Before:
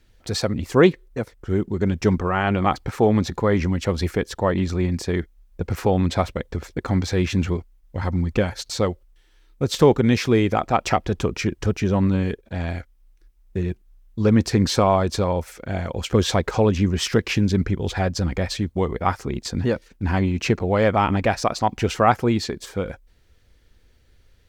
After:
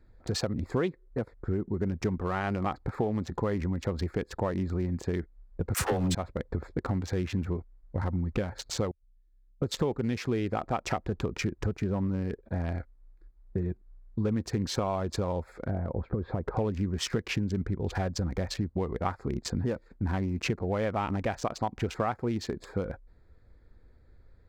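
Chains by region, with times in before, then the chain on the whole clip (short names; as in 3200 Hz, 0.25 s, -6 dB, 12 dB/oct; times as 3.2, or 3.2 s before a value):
5.74–6.15 bell 9000 Hz +10.5 dB 0.86 oct + sample leveller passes 3 + dispersion lows, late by 75 ms, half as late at 420 Hz
8.91–9.62 passive tone stack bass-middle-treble 10-0-1 + compressor, threshold -58 dBFS
15.7–16.57 compressor 16:1, threshold -17 dBFS + tape spacing loss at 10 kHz 45 dB
whole clip: Wiener smoothing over 15 samples; compressor 5:1, threshold -27 dBFS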